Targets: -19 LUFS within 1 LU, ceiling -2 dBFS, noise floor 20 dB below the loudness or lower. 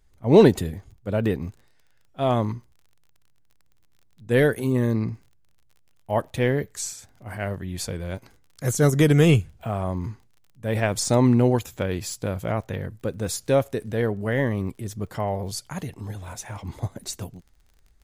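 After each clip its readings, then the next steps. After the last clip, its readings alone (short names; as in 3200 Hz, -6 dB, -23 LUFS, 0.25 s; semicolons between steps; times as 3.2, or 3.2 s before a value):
ticks 29/s; loudness -24.0 LUFS; peak -3.0 dBFS; loudness target -19.0 LUFS
-> de-click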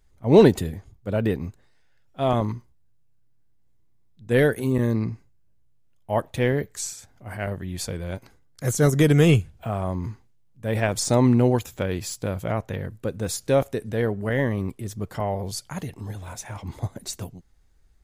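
ticks 0/s; loudness -24.0 LUFS; peak -3.0 dBFS; loudness target -19.0 LUFS
-> gain +5 dB; limiter -2 dBFS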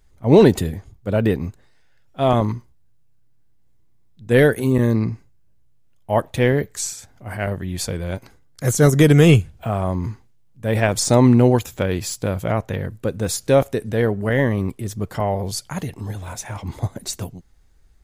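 loudness -19.5 LUFS; peak -2.0 dBFS; noise floor -53 dBFS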